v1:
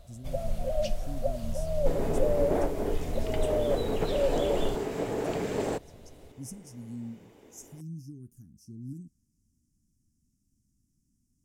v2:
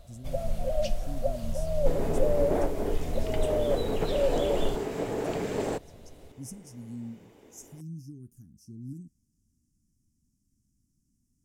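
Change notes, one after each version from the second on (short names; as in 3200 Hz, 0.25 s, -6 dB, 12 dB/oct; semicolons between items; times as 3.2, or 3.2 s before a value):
reverb: on, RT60 0.40 s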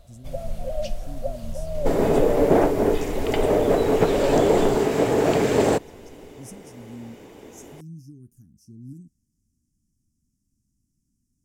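second sound +11.5 dB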